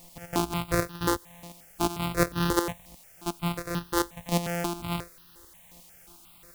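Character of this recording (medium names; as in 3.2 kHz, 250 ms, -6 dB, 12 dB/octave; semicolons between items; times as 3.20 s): a buzz of ramps at a fixed pitch in blocks of 256 samples; chopped level 2.8 Hz, depth 65%, duty 25%; a quantiser's noise floor 10-bit, dither triangular; notches that jump at a steady rate 5.6 Hz 400–2200 Hz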